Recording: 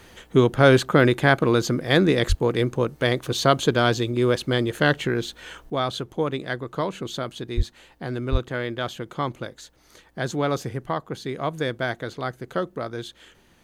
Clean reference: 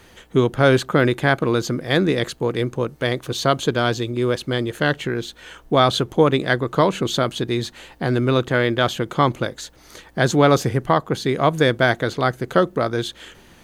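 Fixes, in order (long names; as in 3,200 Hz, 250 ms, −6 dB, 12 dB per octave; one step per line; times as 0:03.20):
0:02.28–0:02.40: high-pass filter 140 Hz 24 dB per octave
0:07.56–0:07.68: high-pass filter 140 Hz 24 dB per octave
0:08.31–0:08.43: high-pass filter 140 Hz 24 dB per octave
level 0 dB, from 0:05.70 +9.5 dB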